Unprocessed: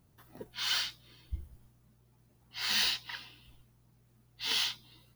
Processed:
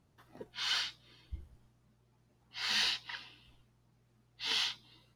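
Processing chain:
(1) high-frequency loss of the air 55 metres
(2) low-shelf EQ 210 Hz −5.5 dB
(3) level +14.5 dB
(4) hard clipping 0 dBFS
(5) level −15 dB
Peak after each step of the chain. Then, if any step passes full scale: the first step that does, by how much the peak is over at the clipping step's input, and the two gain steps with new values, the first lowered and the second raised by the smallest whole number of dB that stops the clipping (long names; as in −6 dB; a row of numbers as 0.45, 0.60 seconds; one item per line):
−19.0, −19.0, −4.5, −4.5, −19.5 dBFS
no step passes full scale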